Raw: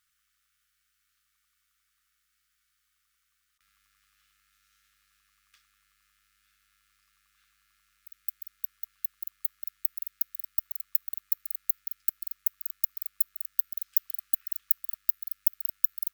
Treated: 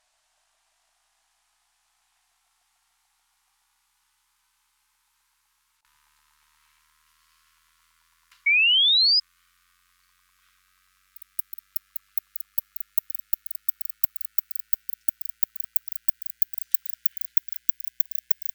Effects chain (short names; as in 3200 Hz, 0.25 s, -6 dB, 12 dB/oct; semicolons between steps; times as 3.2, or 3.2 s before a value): speed glide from 50% -> 124%; painted sound rise, 8.46–9.2, 2200–5100 Hz -24 dBFS; gain +5.5 dB